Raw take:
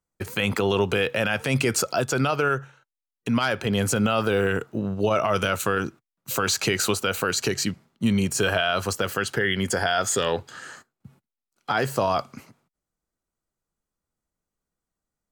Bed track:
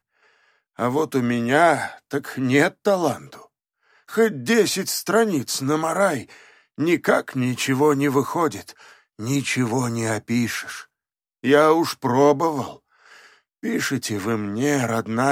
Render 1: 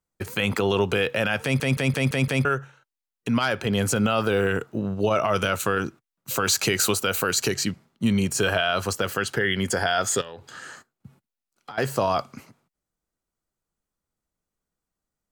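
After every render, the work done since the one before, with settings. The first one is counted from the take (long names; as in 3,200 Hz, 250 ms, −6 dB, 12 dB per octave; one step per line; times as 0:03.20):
0:01.43: stutter in place 0.17 s, 6 plays
0:06.45–0:07.55: high-shelf EQ 8,300 Hz +7.5 dB
0:10.21–0:11.78: downward compressor 16 to 1, threshold −34 dBFS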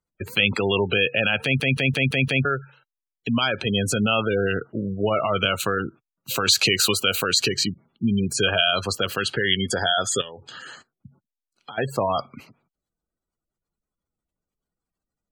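gate on every frequency bin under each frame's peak −20 dB strong
flat-topped bell 3,300 Hz +8.5 dB 1.1 octaves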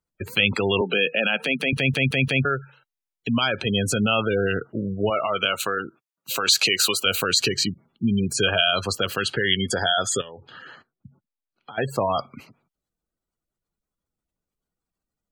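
0:00.81–0:01.73: Chebyshev high-pass filter 160 Hz, order 6
0:05.10–0:07.06: high-pass filter 430 Hz 6 dB per octave
0:10.17–0:11.75: high-frequency loss of the air 300 metres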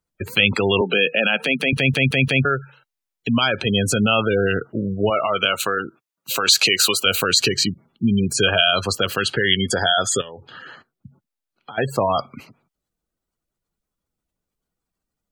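level +3.5 dB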